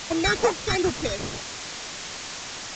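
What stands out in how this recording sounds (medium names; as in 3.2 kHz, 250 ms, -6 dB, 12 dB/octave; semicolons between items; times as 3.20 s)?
aliases and images of a low sample rate 3.1 kHz, jitter 0%; phasing stages 12, 2.5 Hz, lowest notch 790–4500 Hz; a quantiser's noise floor 6-bit, dither triangular; µ-law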